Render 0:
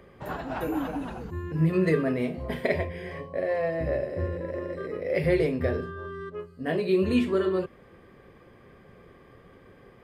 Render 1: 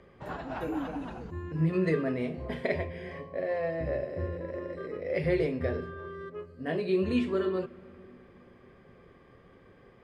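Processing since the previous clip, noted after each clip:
low-pass filter 7,400 Hz 12 dB per octave
on a send at −19.5 dB: convolution reverb RT60 3.4 s, pre-delay 6 ms
on the sum: level −4 dB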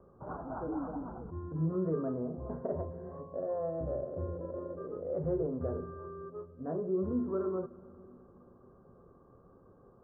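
Butterworth low-pass 1,400 Hz 72 dB per octave
in parallel at −3 dB: brickwall limiter −26.5 dBFS, peak gain reduction 10.5 dB
on the sum: level −7.5 dB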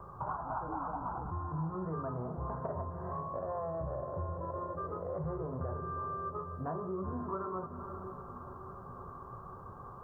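graphic EQ with 10 bands 125 Hz +4 dB, 250 Hz −10 dB, 500 Hz −8 dB, 1,000 Hz +12 dB
downward compressor 4 to 1, threshold −48 dBFS, peak gain reduction 15.5 dB
on a send: feedback delay with all-pass diffusion 510 ms, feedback 60%, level −11 dB
on the sum: level +11 dB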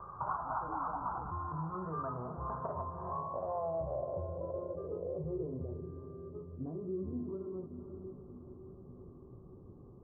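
low-pass filter sweep 1,300 Hz → 320 Hz, 0:02.50–0:05.86
level −4 dB

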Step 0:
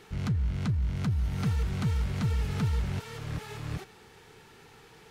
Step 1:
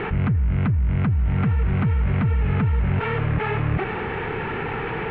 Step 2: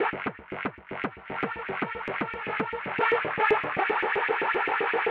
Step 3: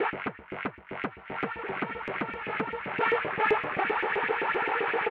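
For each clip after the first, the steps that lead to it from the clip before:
Butterworth low-pass 2,600 Hz 36 dB per octave; envelope flattener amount 70%; level +6 dB
auto-filter high-pass saw up 7.7 Hz 330–2,500 Hz; downward expander −37 dBFS
slap from a distant wall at 280 metres, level −10 dB; level −2 dB

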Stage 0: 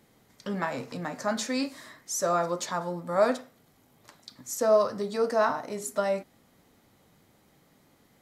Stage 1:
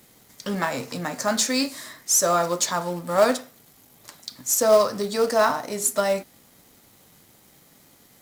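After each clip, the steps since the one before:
high-shelf EQ 4,200 Hz +11.5 dB
in parallel at −4 dB: log-companded quantiser 4 bits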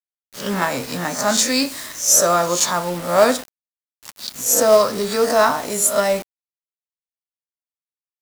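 peak hold with a rise ahead of every peak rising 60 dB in 0.38 s
bit-depth reduction 6 bits, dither none
level +3.5 dB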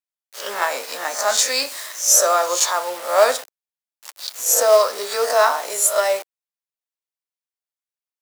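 high-pass filter 470 Hz 24 dB per octave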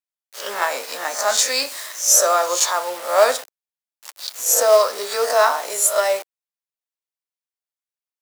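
no processing that can be heard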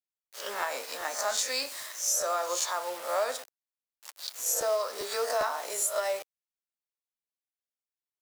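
downward compressor 4 to 1, threshold −18 dBFS, peak gain reduction 8.5 dB
regular buffer underruns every 0.40 s, samples 512, repeat, from 0:00.60
level −8 dB

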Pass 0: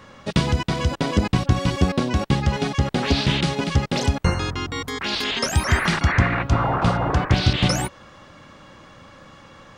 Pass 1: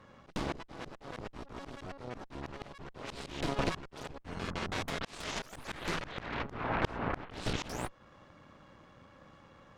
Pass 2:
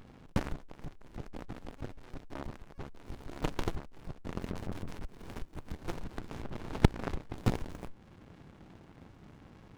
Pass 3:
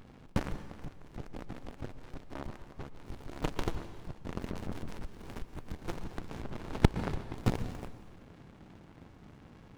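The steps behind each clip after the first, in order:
harmonic generator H 3 −7 dB, 5 −18 dB, 6 −21 dB, 8 −12 dB, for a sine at −3.5 dBFS; volume swells 509 ms; high-shelf EQ 2,400 Hz −8.5 dB
windowed peak hold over 65 samples; level +11 dB
dense smooth reverb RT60 1.4 s, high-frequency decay 0.95×, pre-delay 105 ms, DRR 11.5 dB

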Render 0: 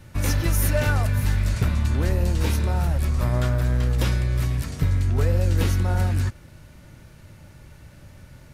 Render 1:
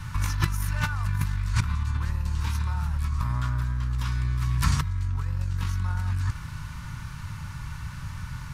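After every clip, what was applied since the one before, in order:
drawn EQ curve 150 Hz 0 dB, 410 Hz −20 dB, 680 Hz −17 dB, 1,000 Hz +7 dB, 2,000 Hz −2 dB, 5,900 Hz −1 dB, 14,000 Hz −7 dB
compressor whose output falls as the input rises −29 dBFS, ratio −1
level +3 dB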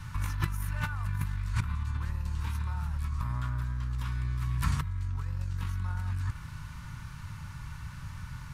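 dynamic equaliser 5,500 Hz, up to −7 dB, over −52 dBFS, Q 1.2
level −5.5 dB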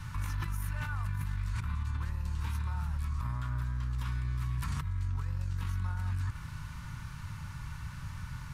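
brickwall limiter −26 dBFS, peak gain reduction 11 dB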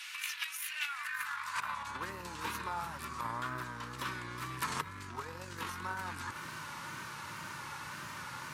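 tape wow and flutter 74 cents
high-pass filter sweep 2,600 Hz → 390 Hz, 0:00.84–0:02.06
level +7 dB

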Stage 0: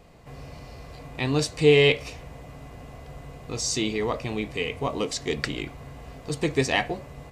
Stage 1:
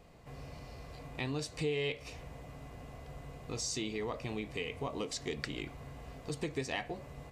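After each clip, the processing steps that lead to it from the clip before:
downward compressor 3 to 1, threshold −29 dBFS, peak gain reduction 12.5 dB
level −6 dB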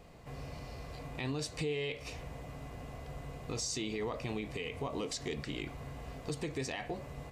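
brickwall limiter −30.5 dBFS, peak gain reduction 10.5 dB
level +3 dB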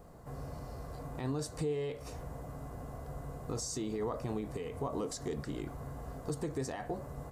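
drawn EQ curve 1,500 Hz 0 dB, 2,400 Hz −16 dB, 11,000 Hz +3 dB
level +1.5 dB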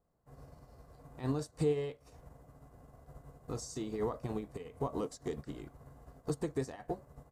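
expander for the loud parts 2.5 to 1, over −51 dBFS
level +5 dB

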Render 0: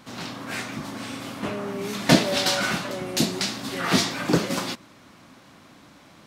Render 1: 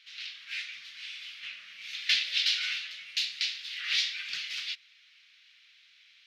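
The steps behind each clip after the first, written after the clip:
inverse Chebyshev high-pass filter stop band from 960 Hz, stop band 50 dB
high-frequency loss of the air 280 metres
level +7 dB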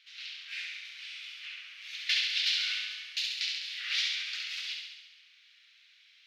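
high-pass filter 770 Hz 12 dB per octave
on a send: flutter between parallel walls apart 11.7 metres, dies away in 1.1 s
on the sum: level −3.5 dB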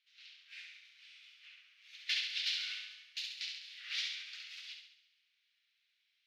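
low-shelf EQ 500 Hz −4 dB
expander for the loud parts 1.5 to 1, over −51 dBFS
level −5.5 dB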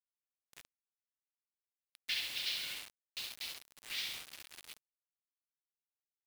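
gate on every frequency bin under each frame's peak −30 dB strong
bit reduction 7 bits
level −2 dB

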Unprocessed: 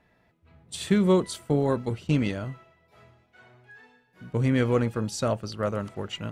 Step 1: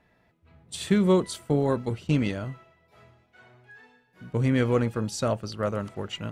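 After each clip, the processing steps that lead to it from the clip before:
no processing that can be heard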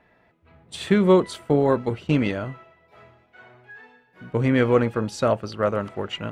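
bass and treble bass −6 dB, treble −11 dB
level +6.5 dB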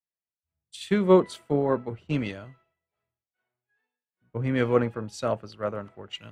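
multiband upward and downward expander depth 100%
level −7 dB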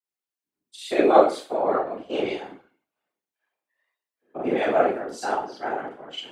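four-comb reverb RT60 0.36 s, combs from 30 ms, DRR −5 dB
frequency shifter +190 Hz
random phases in short frames
level −4 dB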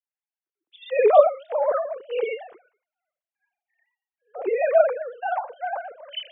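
three sine waves on the formant tracks
level +1 dB

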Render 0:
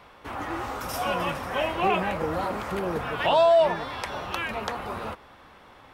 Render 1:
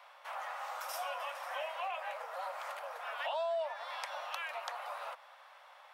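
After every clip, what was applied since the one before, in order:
downward compressor 3 to 1, threshold −32 dBFS, peak gain reduction 12 dB
Butterworth high-pass 550 Hz 72 dB per octave
level −5 dB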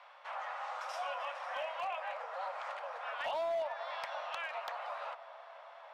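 high-frequency loss of the air 110 metres
delay with a low-pass on its return 281 ms, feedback 84%, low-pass 1,100 Hz, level −15.5 dB
hard clipping −32 dBFS, distortion −23 dB
level +1 dB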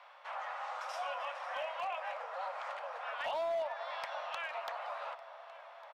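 single-tap delay 1,154 ms −21 dB

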